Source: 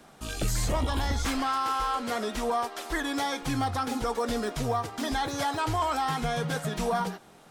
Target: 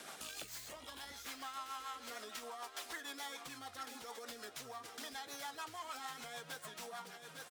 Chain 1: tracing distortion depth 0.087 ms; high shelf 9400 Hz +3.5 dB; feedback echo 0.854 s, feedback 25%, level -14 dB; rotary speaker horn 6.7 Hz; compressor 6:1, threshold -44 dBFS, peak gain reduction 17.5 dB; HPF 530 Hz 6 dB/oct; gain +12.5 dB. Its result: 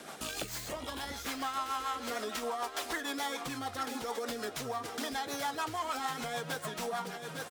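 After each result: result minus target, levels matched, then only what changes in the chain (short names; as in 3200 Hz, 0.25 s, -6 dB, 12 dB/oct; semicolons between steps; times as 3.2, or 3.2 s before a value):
compressor: peak gain reduction -7 dB; 500 Hz band +3.5 dB
change: compressor 6:1, threshold -52.5 dBFS, peak gain reduction 24.5 dB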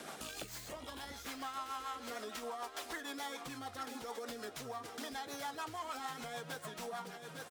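500 Hz band +4.0 dB
change: HPF 1500 Hz 6 dB/oct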